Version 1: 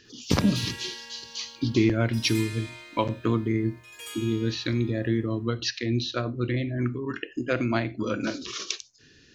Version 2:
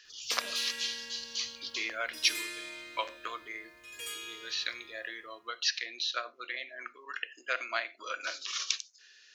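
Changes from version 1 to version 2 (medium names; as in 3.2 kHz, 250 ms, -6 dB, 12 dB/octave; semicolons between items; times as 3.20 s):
speech: add high-pass 740 Hz 24 dB/octave; master: add peaking EQ 870 Hz -11 dB 0.41 oct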